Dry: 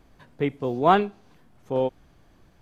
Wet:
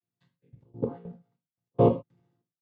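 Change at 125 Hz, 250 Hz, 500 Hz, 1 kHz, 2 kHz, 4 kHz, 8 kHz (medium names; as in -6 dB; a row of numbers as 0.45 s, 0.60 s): +2.5 dB, -3.0 dB, -3.5 dB, -12.5 dB, under -25 dB, under -15 dB, no reading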